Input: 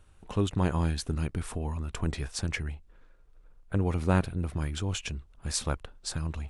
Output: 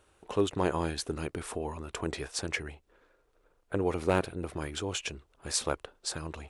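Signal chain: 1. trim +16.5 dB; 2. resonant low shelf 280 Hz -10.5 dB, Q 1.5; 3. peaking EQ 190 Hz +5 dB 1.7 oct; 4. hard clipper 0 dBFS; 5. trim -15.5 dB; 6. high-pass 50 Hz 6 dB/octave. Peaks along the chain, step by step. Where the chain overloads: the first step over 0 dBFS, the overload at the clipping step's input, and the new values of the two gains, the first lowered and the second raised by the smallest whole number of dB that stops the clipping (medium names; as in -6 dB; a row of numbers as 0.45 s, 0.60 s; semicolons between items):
+7.0 dBFS, +4.0 dBFS, +5.5 dBFS, 0.0 dBFS, -15.5 dBFS, -14.0 dBFS; step 1, 5.5 dB; step 1 +10.5 dB, step 5 -9.5 dB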